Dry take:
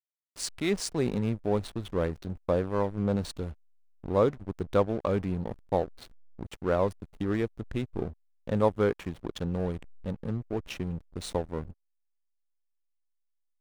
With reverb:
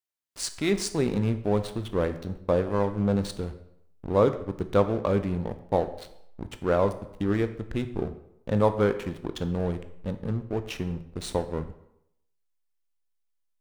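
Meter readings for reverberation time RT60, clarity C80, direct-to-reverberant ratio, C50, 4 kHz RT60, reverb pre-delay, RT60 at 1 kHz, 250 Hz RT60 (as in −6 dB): 0.80 s, 15.0 dB, 9.5 dB, 12.5 dB, 0.60 s, 15 ms, 0.80 s, 0.70 s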